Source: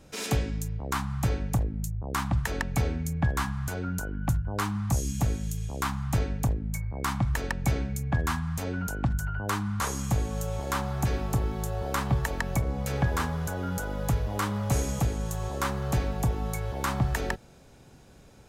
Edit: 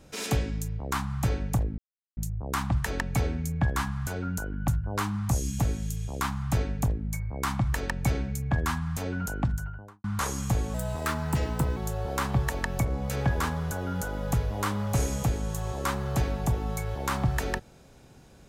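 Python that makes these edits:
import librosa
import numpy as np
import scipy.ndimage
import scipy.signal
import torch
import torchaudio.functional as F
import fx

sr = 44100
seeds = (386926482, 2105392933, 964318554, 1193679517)

y = fx.studio_fade_out(x, sr, start_s=9.02, length_s=0.63)
y = fx.edit(y, sr, fx.insert_silence(at_s=1.78, length_s=0.39),
    fx.speed_span(start_s=10.35, length_s=1.18, speed=1.15), tone=tone)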